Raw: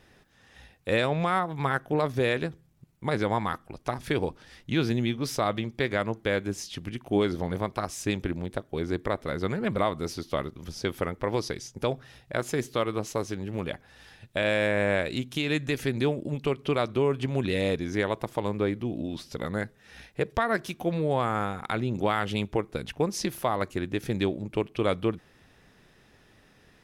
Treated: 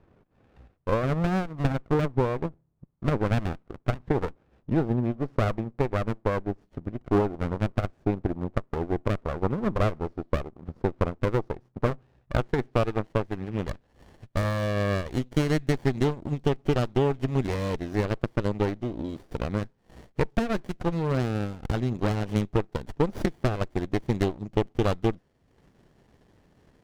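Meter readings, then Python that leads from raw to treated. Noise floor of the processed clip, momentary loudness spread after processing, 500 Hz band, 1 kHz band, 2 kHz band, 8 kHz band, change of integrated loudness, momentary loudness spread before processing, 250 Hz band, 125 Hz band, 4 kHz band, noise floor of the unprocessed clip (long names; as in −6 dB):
−67 dBFS, 8 LU, 0.0 dB, −1.5 dB, −5.0 dB, −8.0 dB, +1.0 dB, 8 LU, +2.0 dB, +5.0 dB, −6.0 dB, −60 dBFS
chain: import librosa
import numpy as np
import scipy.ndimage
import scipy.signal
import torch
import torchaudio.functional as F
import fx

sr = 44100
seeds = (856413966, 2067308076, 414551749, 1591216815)

y = fx.transient(x, sr, attack_db=4, sustain_db=-8)
y = fx.filter_sweep_lowpass(y, sr, from_hz=900.0, to_hz=5900.0, start_s=11.58, end_s=15.01, q=1.8)
y = fx.running_max(y, sr, window=33)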